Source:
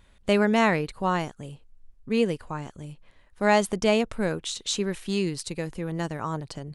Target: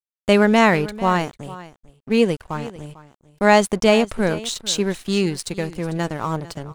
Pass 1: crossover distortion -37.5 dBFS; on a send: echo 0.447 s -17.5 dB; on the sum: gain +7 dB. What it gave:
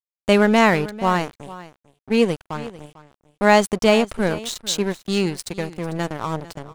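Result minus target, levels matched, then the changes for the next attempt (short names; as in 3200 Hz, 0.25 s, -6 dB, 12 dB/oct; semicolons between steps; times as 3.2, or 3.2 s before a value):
crossover distortion: distortion +6 dB
change: crossover distortion -45 dBFS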